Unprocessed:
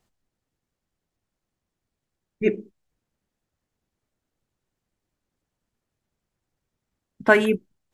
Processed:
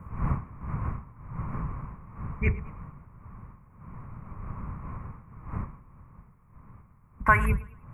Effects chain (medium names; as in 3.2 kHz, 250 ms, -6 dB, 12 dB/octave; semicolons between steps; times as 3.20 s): octave divider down 2 oct, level +2 dB; wind noise 270 Hz -37 dBFS; FFT filter 140 Hz 0 dB, 330 Hz -17 dB, 740 Hz -10 dB, 1.1 kHz +11 dB, 1.6 kHz -2 dB, 2.3 kHz +3 dB, 3.5 kHz -30 dB, 11 kHz +1 dB; compression 1.5:1, threshold -33 dBFS, peak gain reduction 8.5 dB; modulated delay 108 ms, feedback 35%, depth 70 cents, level -19.5 dB; trim +4 dB